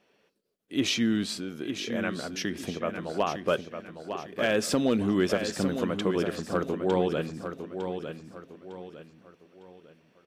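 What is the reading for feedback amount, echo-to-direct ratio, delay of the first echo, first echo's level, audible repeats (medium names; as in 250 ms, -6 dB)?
36%, -7.5 dB, 905 ms, -8.0 dB, 4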